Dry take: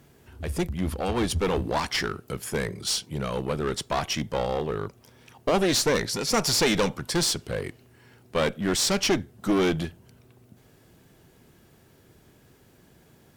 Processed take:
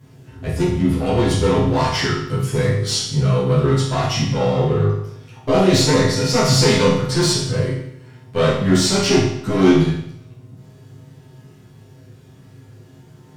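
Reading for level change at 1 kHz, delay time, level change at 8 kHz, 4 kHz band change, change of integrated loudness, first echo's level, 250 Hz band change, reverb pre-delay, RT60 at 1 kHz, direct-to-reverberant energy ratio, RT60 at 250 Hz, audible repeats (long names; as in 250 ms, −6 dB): +6.5 dB, no echo audible, +4.5 dB, +6.0 dB, +8.5 dB, no echo audible, +10.0 dB, 8 ms, 0.75 s, −10.5 dB, 0.75 s, no echo audible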